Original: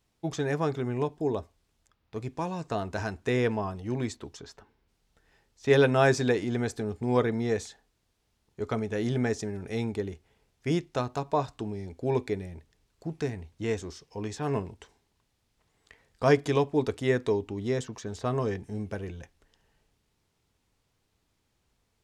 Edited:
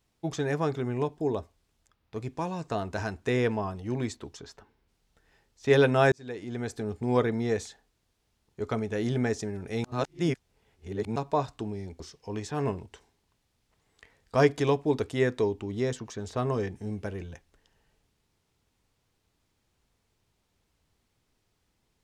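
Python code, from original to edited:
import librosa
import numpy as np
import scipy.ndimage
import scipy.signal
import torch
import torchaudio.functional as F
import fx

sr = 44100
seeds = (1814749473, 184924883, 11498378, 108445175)

y = fx.edit(x, sr, fx.fade_in_span(start_s=6.12, length_s=0.81),
    fx.reverse_span(start_s=9.84, length_s=1.32),
    fx.cut(start_s=12.0, length_s=1.88), tone=tone)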